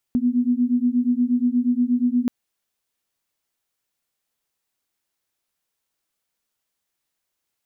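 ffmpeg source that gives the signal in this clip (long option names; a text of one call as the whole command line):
ffmpeg -f lavfi -i "aevalsrc='0.1*(sin(2*PI*241*t)+sin(2*PI*249.4*t))':duration=2.13:sample_rate=44100" out.wav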